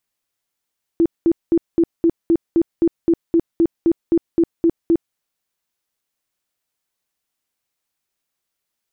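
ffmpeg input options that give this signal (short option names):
-f lavfi -i "aevalsrc='0.299*sin(2*PI*334*mod(t,0.26))*lt(mod(t,0.26),19/334)':d=4.16:s=44100"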